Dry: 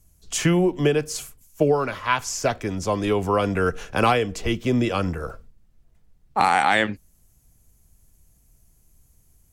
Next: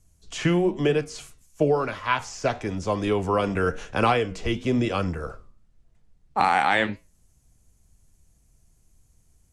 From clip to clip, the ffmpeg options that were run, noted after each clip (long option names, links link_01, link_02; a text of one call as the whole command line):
ffmpeg -i in.wav -filter_complex "[0:a]lowpass=frequency=10000:width=0.5412,lowpass=frequency=10000:width=1.3066,flanger=delay=8.2:depth=7.2:regen=-81:speed=1:shape=triangular,acrossover=split=4500[link_01][link_02];[link_02]acompressor=threshold=-45dB:ratio=4:attack=1:release=60[link_03];[link_01][link_03]amix=inputs=2:normalize=0,volume=2.5dB" out.wav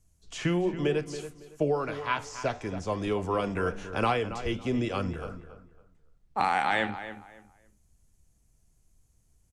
ffmpeg -i in.wav -filter_complex "[0:a]asplit=2[link_01][link_02];[link_02]adelay=278,lowpass=frequency=2700:poles=1,volume=-11.5dB,asplit=2[link_03][link_04];[link_04]adelay=278,lowpass=frequency=2700:poles=1,volume=0.26,asplit=2[link_05][link_06];[link_06]adelay=278,lowpass=frequency=2700:poles=1,volume=0.26[link_07];[link_01][link_03][link_05][link_07]amix=inputs=4:normalize=0,volume=-5.5dB" out.wav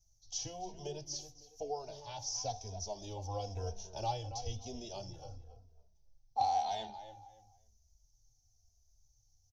ffmpeg -i in.wav -filter_complex "[0:a]firequalizer=gain_entry='entry(110,0);entry(170,-17);entry(400,-13);entry(790,2);entry(1200,-27);entry(2000,-25);entry(3400,-3);entry(5900,15);entry(8400,-25);entry(13000,1)':delay=0.05:min_phase=1,asplit=2[link_01][link_02];[link_02]adelay=2.9,afreqshift=-1[link_03];[link_01][link_03]amix=inputs=2:normalize=1,volume=-1.5dB" out.wav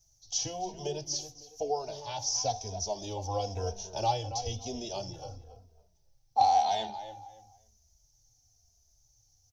ffmpeg -i in.wav -af "lowshelf=frequency=67:gain=-12,volume=8dB" out.wav